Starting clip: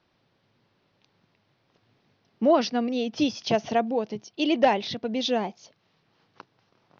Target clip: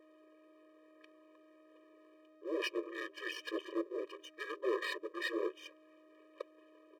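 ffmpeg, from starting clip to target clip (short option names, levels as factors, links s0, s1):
-af "adynamicequalizer=threshold=0.0158:dfrequency=370:dqfactor=1.1:tfrequency=370:tqfactor=1.1:attack=5:release=100:ratio=0.375:range=4:mode=cutabove:tftype=bell,areverse,acompressor=threshold=0.0282:ratio=10,areverse,aeval=exprs='val(0)+0.00224*sin(2*PI*650*n/s)':c=same,asetrate=23361,aresample=44100,atempo=1.88775,afreqshift=-33,aeval=exprs='max(val(0),0)':c=same,afftfilt=real='re*eq(mod(floor(b*sr/1024/320),2),1)':imag='im*eq(mod(floor(b*sr/1024/320),2),1)':win_size=1024:overlap=0.75,volume=2.37"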